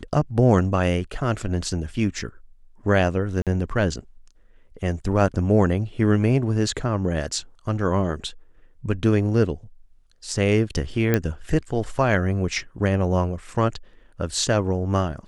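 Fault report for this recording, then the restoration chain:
0:03.42–0:03.47: drop-out 47 ms
0:11.14: click −7 dBFS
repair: click removal
repair the gap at 0:03.42, 47 ms

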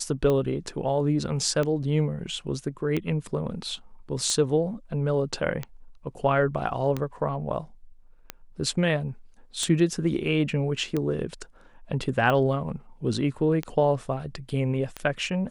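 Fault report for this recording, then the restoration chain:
scratch tick 45 rpm −15 dBFS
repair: click removal

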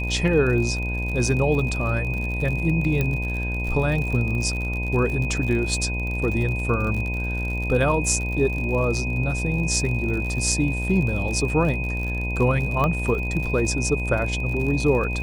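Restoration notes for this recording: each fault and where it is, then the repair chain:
mains buzz 60 Hz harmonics 17 −27 dBFS
surface crackle 58 per second −29 dBFS
whistle 2,500 Hz −29 dBFS
0:03.01: click −11 dBFS
0:12.84: click −12 dBFS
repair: click removal
notch filter 2,500 Hz, Q 30
hum removal 60 Hz, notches 17

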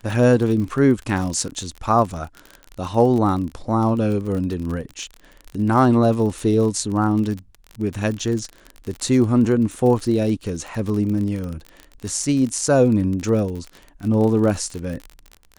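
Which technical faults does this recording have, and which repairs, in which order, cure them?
surface crackle 37 per second −26 dBFS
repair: click removal

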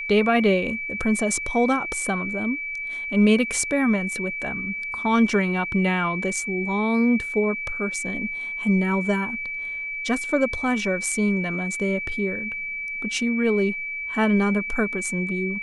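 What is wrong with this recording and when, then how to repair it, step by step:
whistle 2,300 Hz −28 dBFS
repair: notch filter 2,300 Hz, Q 30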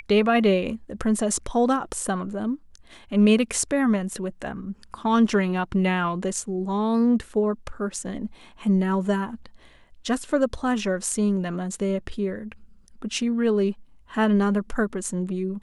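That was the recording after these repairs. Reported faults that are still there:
none of them is left

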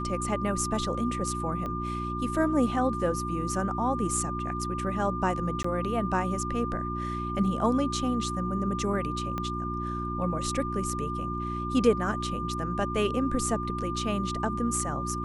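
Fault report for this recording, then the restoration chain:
mains hum 60 Hz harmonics 6 −34 dBFS
whistle 1,200 Hz −33 dBFS
0:01.66: click −23 dBFS
0:05.63–0:05.64: drop-out 14 ms
0:09.38: click −19 dBFS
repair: click removal
hum removal 60 Hz, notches 6
notch filter 1,200 Hz, Q 30
repair the gap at 0:05.63, 14 ms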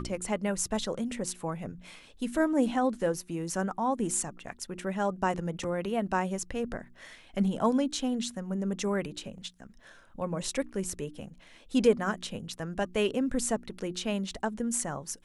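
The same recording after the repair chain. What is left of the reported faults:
0:01.66: click
0:09.38: click

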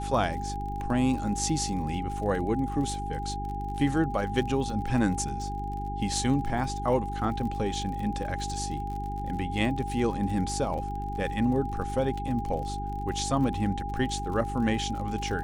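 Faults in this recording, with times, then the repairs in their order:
surface crackle 45 per second −36 dBFS
mains hum 50 Hz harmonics 8 −35 dBFS
whistle 810 Hz −34 dBFS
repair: click removal
hum removal 50 Hz, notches 8
notch filter 810 Hz, Q 30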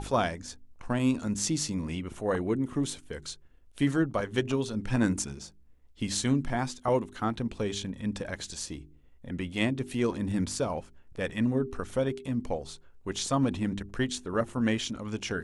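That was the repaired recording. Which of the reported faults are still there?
none of them is left

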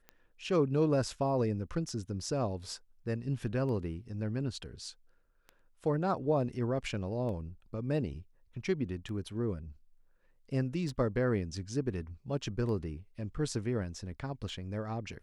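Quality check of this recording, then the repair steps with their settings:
scratch tick 33 1/3 rpm −32 dBFS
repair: click removal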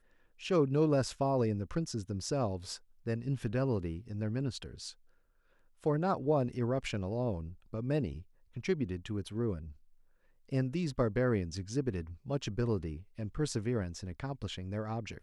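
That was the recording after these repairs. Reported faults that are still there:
none of them is left

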